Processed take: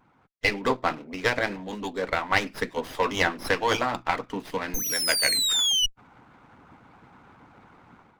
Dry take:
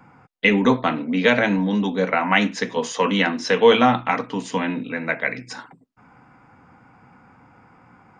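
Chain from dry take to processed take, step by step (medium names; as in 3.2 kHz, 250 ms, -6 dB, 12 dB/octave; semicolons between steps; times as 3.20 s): painted sound fall, 4.74–5.86 s, 2.9–6.4 kHz -18 dBFS; vibrato 0.33 Hz 5.1 cents; harmonic-percussive split harmonic -16 dB; level rider gain up to 11 dB; sliding maximum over 5 samples; trim -6 dB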